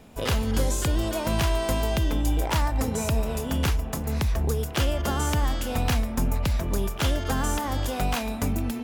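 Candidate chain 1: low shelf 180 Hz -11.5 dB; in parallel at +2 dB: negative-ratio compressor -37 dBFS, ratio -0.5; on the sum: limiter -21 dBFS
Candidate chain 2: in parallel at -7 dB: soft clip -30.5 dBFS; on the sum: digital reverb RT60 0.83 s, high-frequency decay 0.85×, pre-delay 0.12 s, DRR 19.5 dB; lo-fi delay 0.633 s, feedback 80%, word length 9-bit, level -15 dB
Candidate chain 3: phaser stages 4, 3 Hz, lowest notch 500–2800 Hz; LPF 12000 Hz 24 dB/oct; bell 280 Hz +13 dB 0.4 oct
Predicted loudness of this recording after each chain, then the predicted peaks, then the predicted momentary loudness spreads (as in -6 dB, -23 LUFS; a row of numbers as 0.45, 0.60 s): -30.5, -25.0, -24.5 LUFS; -21.0, -12.0, -10.0 dBFS; 1, 2, 3 LU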